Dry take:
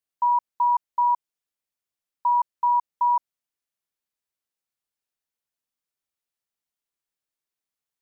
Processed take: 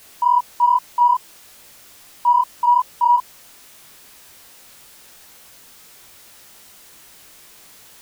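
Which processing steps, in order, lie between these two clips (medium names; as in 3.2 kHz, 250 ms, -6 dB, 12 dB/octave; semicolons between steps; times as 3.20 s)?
jump at every zero crossing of -42.5 dBFS; chorus 2.4 Hz, delay 18 ms, depth 5.9 ms; trim +7.5 dB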